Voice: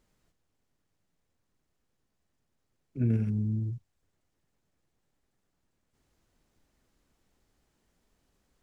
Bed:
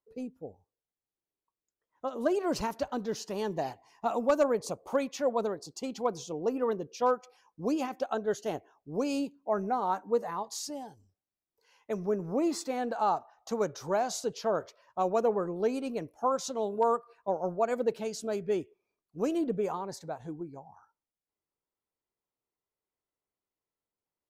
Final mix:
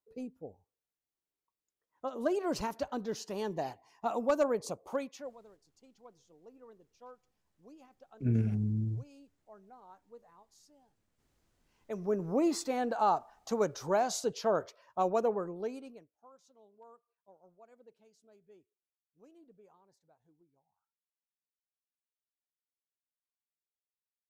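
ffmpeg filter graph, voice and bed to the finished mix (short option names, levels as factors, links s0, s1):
-filter_complex "[0:a]adelay=5250,volume=0.794[s0];[1:a]volume=13.3,afade=t=out:st=4.79:d=0.58:silence=0.0749894,afade=t=in:st=11.62:d=0.6:silence=0.0530884,afade=t=out:st=14.91:d=1.17:silence=0.0316228[s1];[s0][s1]amix=inputs=2:normalize=0"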